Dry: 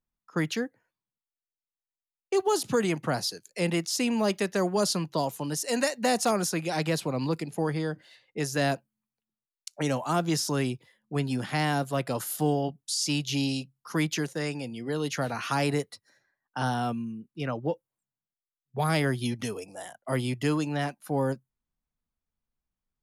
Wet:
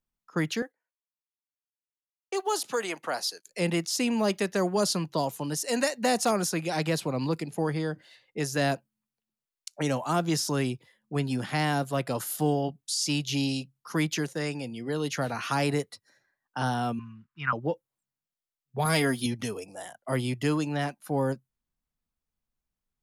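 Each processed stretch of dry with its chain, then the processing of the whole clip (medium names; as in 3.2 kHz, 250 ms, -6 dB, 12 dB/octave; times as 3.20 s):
0.62–3.45 s: gate -52 dBFS, range -13 dB + high-pass 520 Hz
16.99–17.53 s: block-companded coder 7-bit + FFT filter 110 Hz 0 dB, 580 Hz -26 dB, 1 kHz +11 dB, 1.4 kHz +13 dB, 6 kHz -14 dB, 12 kHz -29 dB
18.85–19.26 s: treble shelf 5.7 kHz +7.5 dB + comb 4.3 ms, depth 59% + small samples zeroed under -52 dBFS
whole clip: none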